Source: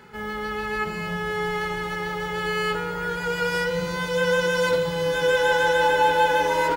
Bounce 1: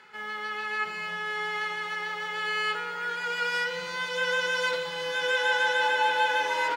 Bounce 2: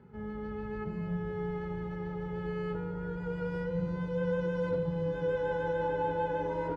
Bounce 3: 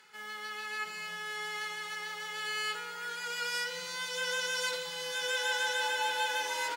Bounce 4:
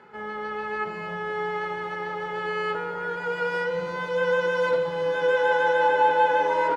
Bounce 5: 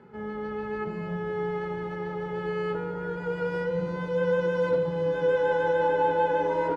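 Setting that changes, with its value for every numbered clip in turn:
band-pass, frequency: 2600, 100, 6700, 750, 270 Hz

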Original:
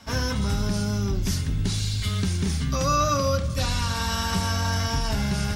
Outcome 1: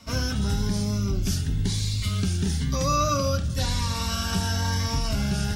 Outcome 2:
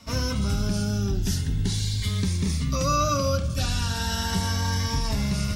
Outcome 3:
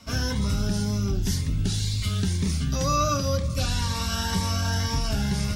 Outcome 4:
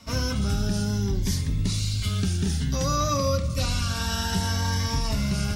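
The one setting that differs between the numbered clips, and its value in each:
cascading phaser, rate: 1, 0.37, 2, 0.58 Hz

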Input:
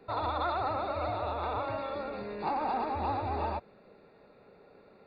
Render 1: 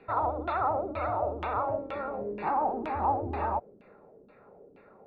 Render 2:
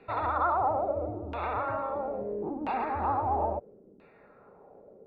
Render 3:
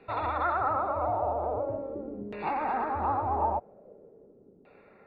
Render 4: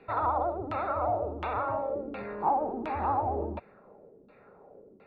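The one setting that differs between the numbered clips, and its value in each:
LFO low-pass, rate: 2.1, 0.75, 0.43, 1.4 Hz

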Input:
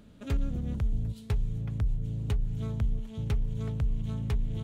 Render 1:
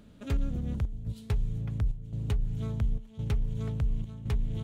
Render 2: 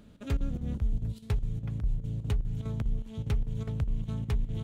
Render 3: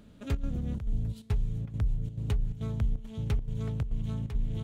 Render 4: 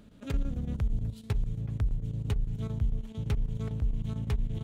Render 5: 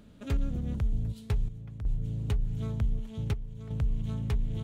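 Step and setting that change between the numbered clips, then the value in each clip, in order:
chopper, rate: 0.94, 4.9, 2.3, 8.9, 0.54 Hz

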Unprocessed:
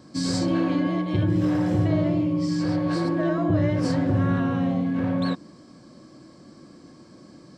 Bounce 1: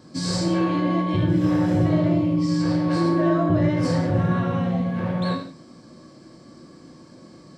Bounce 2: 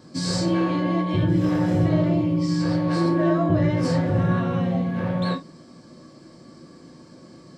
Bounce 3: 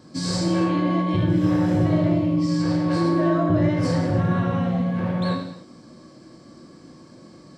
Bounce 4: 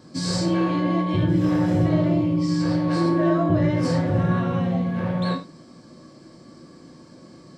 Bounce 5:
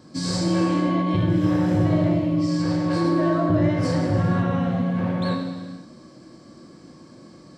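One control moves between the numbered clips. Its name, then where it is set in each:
non-linear reverb, gate: 210, 90, 320, 130, 540 ms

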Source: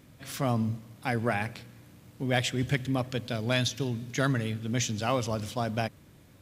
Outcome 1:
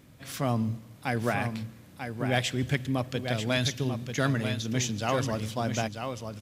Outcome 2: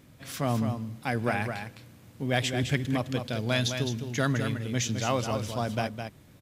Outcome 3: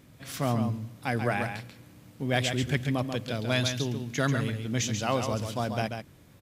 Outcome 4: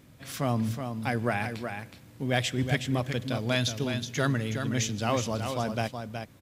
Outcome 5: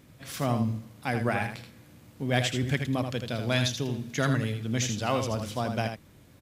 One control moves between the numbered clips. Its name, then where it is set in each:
echo, time: 941, 210, 138, 370, 80 ms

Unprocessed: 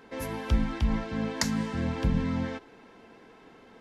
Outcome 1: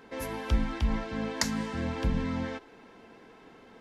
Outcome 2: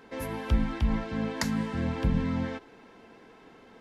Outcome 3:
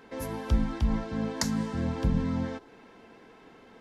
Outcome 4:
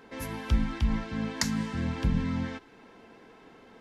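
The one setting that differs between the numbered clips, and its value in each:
dynamic EQ, frequency: 140, 6100, 2400, 550 Hz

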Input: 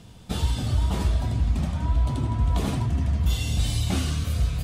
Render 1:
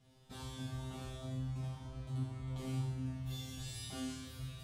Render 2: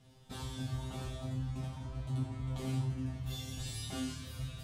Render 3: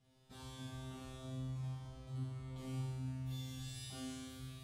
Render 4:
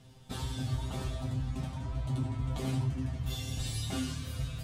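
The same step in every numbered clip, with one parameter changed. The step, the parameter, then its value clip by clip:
resonator, decay: 0.84, 0.4, 1.8, 0.16 s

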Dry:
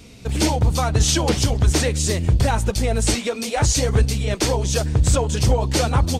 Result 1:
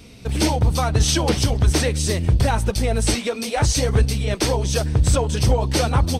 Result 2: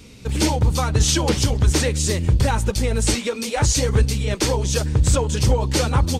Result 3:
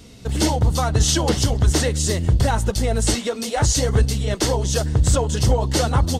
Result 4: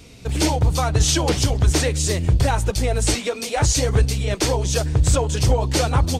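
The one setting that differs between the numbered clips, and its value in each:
notch, frequency: 7000, 690, 2400, 220 Hz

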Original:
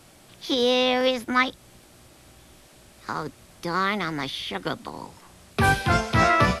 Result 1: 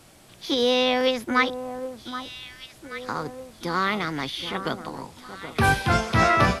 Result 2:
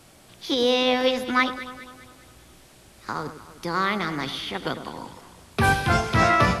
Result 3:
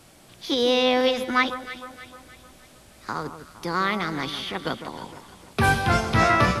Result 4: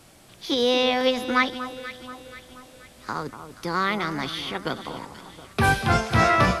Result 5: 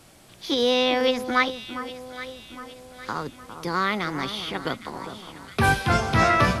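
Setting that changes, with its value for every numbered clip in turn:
echo with dull and thin repeats by turns, time: 0.776, 0.102, 0.154, 0.24, 0.406 s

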